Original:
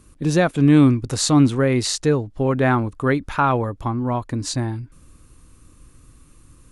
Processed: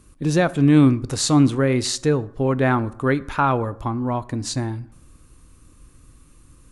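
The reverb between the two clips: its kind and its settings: plate-style reverb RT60 0.72 s, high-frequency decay 0.55×, DRR 16.5 dB; gain -1 dB

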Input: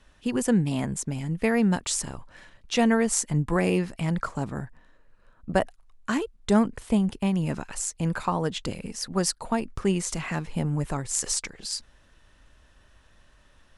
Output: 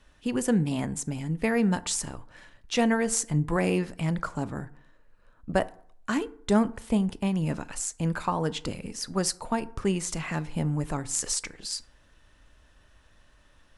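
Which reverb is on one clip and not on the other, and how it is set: FDN reverb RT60 0.59 s, low-frequency decay 0.95×, high-frequency decay 0.5×, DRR 14.5 dB; gain -1.5 dB

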